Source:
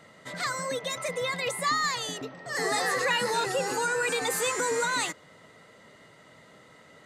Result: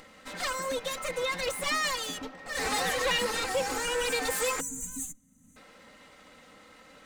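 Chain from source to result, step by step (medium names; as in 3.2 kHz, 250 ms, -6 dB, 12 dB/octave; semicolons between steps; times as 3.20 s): comb filter that takes the minimum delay 3.8 ms; time-frequency box 4.60–5.57 s, 280–5900 Hz -27 dB; upward compressor, threshold -49 dBFS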